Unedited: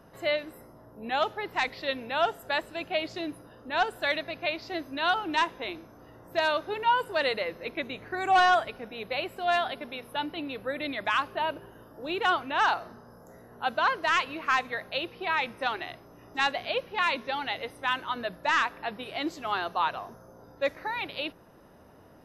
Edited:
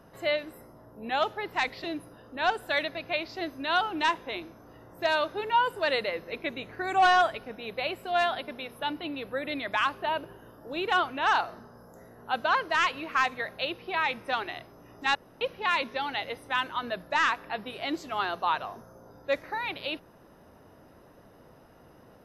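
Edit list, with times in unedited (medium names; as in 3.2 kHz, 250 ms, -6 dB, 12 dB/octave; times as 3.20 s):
1.84–3.17 s: delete
16.48–16.74 s: room tone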